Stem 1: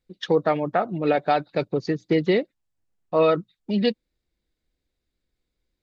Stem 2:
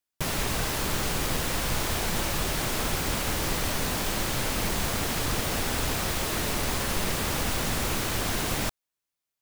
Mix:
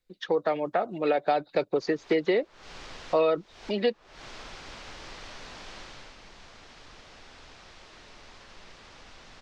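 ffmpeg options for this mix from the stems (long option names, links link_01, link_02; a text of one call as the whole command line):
ffmpeg -i stem1.wav -i stem2.wav -filter_complex "[0:a]dynaudnorm=framelen=770:gausssize=3:maxgain=8dB,volume=1.5dB,asplit=2[link_01][link_02];[1:a]lowpass=frequency=5700:width=0.5412,lowpass=frequency=5700:width=1.3066,adelay=1600,volume=-12dB,afade=type=out:start_time=5.79:duration=0.37:silence=0.446684[link_03];[link_02]apad=whole_len=485943[link_04];[link_03][link_04]sidechaincompress=threshold=-29dB:ratio=4:attack=24:release=278[link_05];[link_01][link_05]amix=inputs=2:normalize=0,equalizer=frequency=120:width=0.35:gain=-9,acrossover=split=300|740|2000[link_06][link_07][link_08][link_09];[link_06]acompressor=threshold=-43dB:ratio=4[link_10];[link_07]acompressor=threshold=-23dB:ratio=4[link_11];[link_08]acompressor=threshold=-37dB:ratio=4[link_12];[link_09]acompressor=threshold=-42dB:ratio=4[link_13];[link_10][link_11][link_12][link_13]amix=inputs=4:normalize=0" out.wav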